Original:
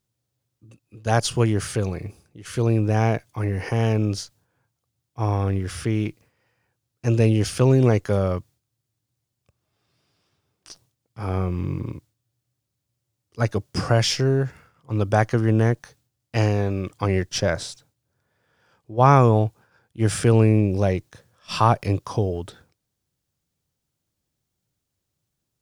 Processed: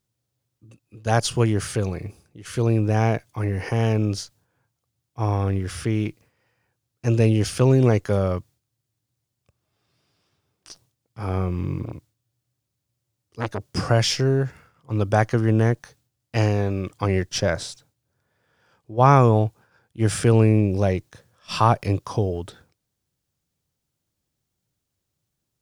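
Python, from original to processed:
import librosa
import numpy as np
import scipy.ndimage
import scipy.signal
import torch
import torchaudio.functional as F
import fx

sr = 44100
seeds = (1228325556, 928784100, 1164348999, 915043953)

y = fx.transformer_sat(x, sr, knee_hz=1200.0, at=(11.85, 13.67))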